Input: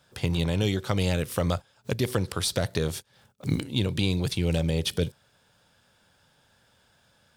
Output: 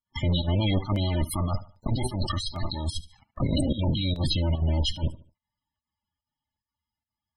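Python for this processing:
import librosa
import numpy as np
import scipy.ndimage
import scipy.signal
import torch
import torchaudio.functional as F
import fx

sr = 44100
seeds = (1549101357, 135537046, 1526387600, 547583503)

y = fx.lower_of_two(x, sr, delay_ms=0.98)
y = fx.doppler_pass(y, sr, speed_mps=6, closest_m=4.5, pass_at_s=2.62)
y = fx.peak_eq(y, sr, hz=76.0, db=7.0, octaves=0.21)
y = y + 0.46 * np.pad(y, (int(3.4 * sr / 1000.0), 0))[:len(y)]
y = fx.dynamic_eq(y, sr, hz=4200.0, q=1.6, threshold_db=-49.0, ratio=4.0, max_db=5)
y = fx.over_compress(y, sr, threshold_db=-37.0, ratio=-1.0)
y = fx.leveller(y, sr, passes=5)
y = fx.volume_shaper(y, sr, bpm=145, per_beat=1, depth_db=-13, release_ms=63.0, shape='slow start')
y = fx.echo_feedback(y, sr, ms=73, feedback_pct=34, wet_db=-16)
y = fx.spec_topn(y, sr, count=32)
y = fx.buffer_crackle(y, sr, first_s=0.96, period_s=0.8, block=64, kind='repeat')
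y = y * librosa.db_to_amplitude(-4.0)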